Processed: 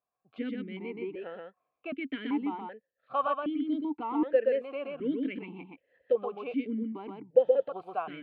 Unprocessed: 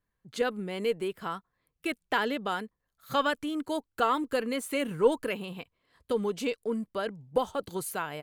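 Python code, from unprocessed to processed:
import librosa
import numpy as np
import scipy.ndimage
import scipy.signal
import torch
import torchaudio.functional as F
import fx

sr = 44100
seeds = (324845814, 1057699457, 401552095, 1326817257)

p1 = fx.rider(x, sr, range_db=3, speed_s=0.5)
p2 = x + (p1 * 10.0 ** (2.0 / 20.0))
p3 = fx.air_absorb(p2, sr, metres=420.0)
p4 = p3 + 10.0 ** (-3.0 / 20.0) * np.pad(p3, (int(125 * sr / 1000.0), 0))[:len(p3)]
p5 = fx.vowel_held(p4, sr, hz=2.6)
y = p5 * 10.0 ** (1.5 / 20.0)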